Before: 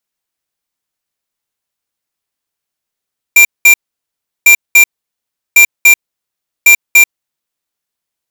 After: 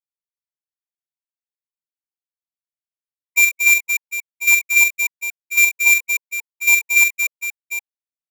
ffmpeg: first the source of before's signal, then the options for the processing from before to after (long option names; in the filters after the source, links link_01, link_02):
-f lavfi -i "aevalsrc='0.668*(2*lt(mod(2370*t,1),0.5)-1)*clip(min(mod(mod(t,1.1),0.29),0.09-mod(mod(t,1.1),0.29))/0.005,0,1)*lt(mod(t,1.1),0.58)':duration=4.4:sample_rate=44100"
-af "agate=range=-28dB:threshold=-5dB:ratio=16:detection=peak,aecho=1:1:44|65|230|752:0.501|0.2|0.473|0.251,afftfilt=real='re*(1-between(b*sr/1024,630*pow(1600/630,0.5+0.5*sin(2*PI*4.8*pts/sr))/1.41,630*pow(1600/630,0.5+0.5*sin(2*PI*4.8*pts/sr))*1.41))':imag='im*(1-between(b*sr/1024,630*pow(1600/630,0.5+0.5*sin(2*PI*4.8*pts/sr))/1.41,630*pow(1600/630,0.5+0.5*sin(2*PI*4.8*pts/sr))*1.41))':win_size=1024:overlap=0.75"